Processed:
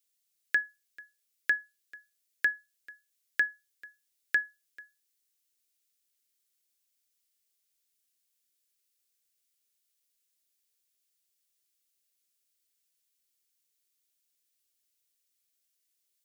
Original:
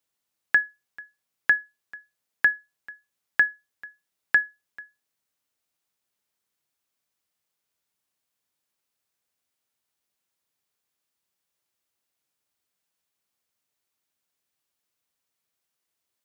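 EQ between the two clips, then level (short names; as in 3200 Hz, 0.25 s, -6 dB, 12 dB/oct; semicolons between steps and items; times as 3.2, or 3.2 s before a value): high shelf 2900 Hz +11 dB; fixed phaser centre 380 Hz, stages 4; -6.0 dB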